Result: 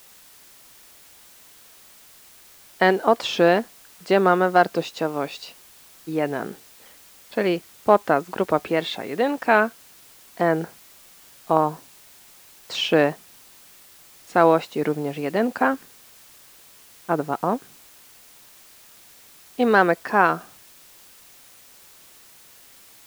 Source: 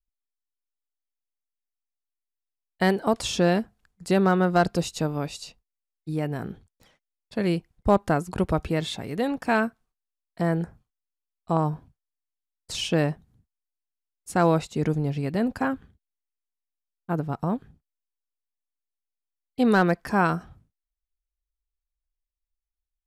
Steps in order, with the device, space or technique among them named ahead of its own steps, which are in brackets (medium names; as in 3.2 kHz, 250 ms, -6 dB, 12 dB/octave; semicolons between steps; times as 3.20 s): dictaphone (band-pass 350–3300 Hz; level rider gain up to 8.5 dB; wow and flutter; white noise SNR 25 dB)